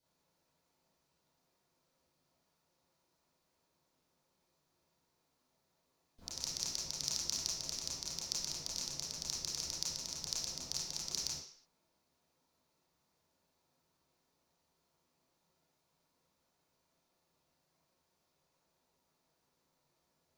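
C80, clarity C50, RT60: 6.0 dB, 1.5 dB, 0.55 s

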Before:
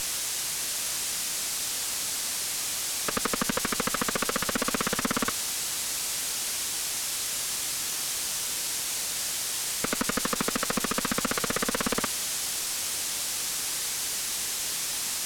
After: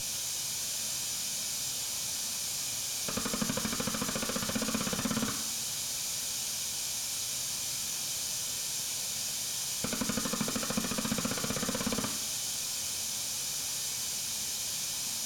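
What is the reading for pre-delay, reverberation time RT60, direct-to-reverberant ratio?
3 ms, 0.70 s, 3.0 dB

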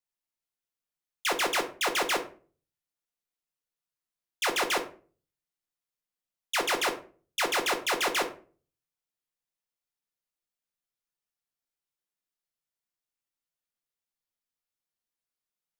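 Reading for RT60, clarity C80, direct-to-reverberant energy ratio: 0.40 s, 17.5 dB, 3.5 dB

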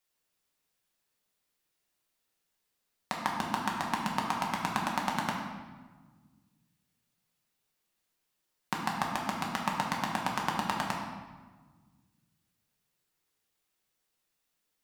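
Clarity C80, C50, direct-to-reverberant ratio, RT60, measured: 4.5 dB, 2.5 dB, −2.0 dB, 1.4 s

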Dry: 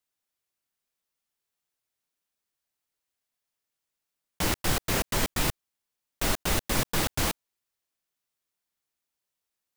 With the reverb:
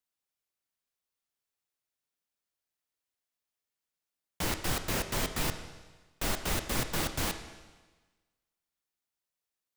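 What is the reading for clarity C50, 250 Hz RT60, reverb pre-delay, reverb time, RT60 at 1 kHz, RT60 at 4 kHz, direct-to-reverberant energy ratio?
10.0 dB, 1.3 s, 23 ms, 1.3 s, 1.3 s, 1.3 s, 8.0 dB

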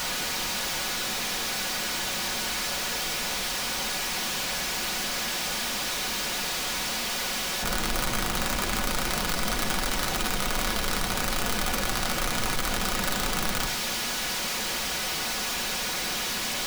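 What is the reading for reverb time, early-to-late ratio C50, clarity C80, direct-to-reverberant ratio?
0.80 s, 13.0 dB, 15.0 dB, 3.5 dB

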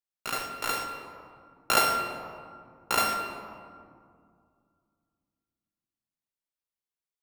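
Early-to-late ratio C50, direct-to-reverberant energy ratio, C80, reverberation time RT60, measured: 5.0 dB, 3.0 dB, 6.0 dB, 2.2 s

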